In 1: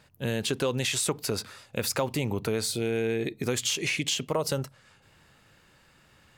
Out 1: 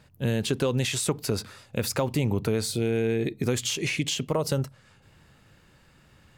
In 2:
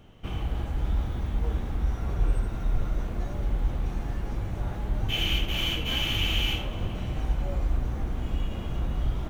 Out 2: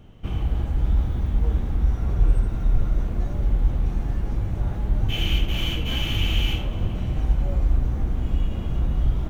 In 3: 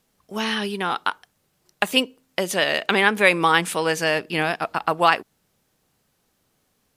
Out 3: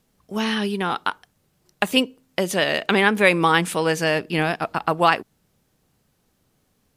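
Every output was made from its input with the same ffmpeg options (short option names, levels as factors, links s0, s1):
-af "lowshelf=f=340:g=7.5,volume=0.891"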